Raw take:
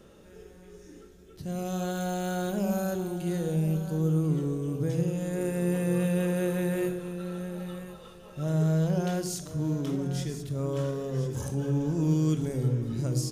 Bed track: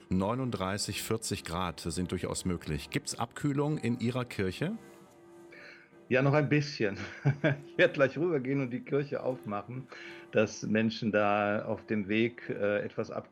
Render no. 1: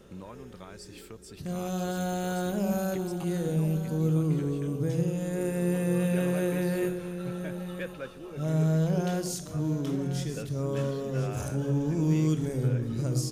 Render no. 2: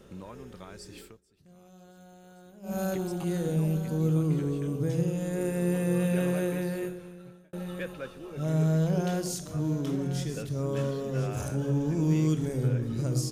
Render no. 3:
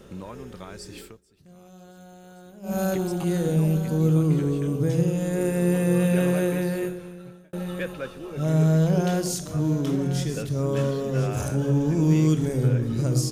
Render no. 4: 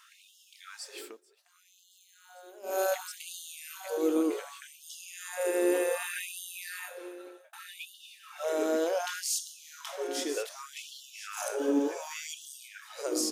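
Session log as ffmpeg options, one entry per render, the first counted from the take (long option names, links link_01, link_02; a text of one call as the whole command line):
ffmpeg -i in.wav -i bed.wav -filter_complex "[1:a]volume=-14dB[link_01];[0:a][link_01]amix=inputs=2:normalize=0" out.wav
ffmpeg -i in.wav -filter_complex "[0:a]asplit=4[link_01][link_02][link_03][link_04];[link_01]atrim=end=1.21,asetpts=PTS-STARTPTS,afade=type=out:start_time=1.01:duration=0.2:silence=0.0794328[link_05];[link_02]atrim=start=1.21:end=2.62,asetpts=PTS-STARTPTS,volume=-22dB[link_06];[link_03]atrim=start=2.62:end=7.53,asetpts=PTS-STARTPTS,afade=type=in:duration=0.2:silence=0.0794328,afade=type=out:start_time=3.68:duration=1.23[link_07];[link_04]atrim=start=7.53,asetpts=PTS-STARTPTS,afade=type=in:duration=0.004:curve=hsin[link_08];[link_05][link_06][link_07][link_08]concat=n=4:v=0:a=1" out.wav
ffmpeg -i in.wav -af "volume=5.5dB" out.wav
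ffmpeg -i in.wav -af "afftfilt=real='re*gte(b*sr/1024,250*pow(2800/250,0.5+0.5*sin(2*PI*0.66*pts/sr)))':imag='im*gte(b*sr/1024,250*pow(2800/250,0.5+0.5*sin(2*PI*0.66*pts/sr)))':win_size=1024:overlap=0.75" out.wav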